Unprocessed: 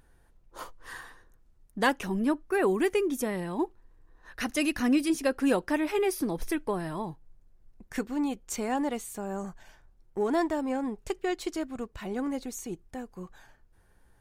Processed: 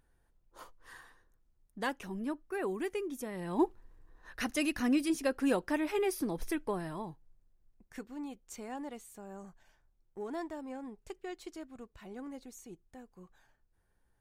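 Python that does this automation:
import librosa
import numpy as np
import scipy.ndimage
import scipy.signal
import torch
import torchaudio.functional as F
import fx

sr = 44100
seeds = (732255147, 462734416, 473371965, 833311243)

y = fx.gain(x, sr, db=fx.line((3.31, -10.0), (3.64, 2.0), (4.64, -4.5), (6.74, -4.5), (7.94, -12.5)))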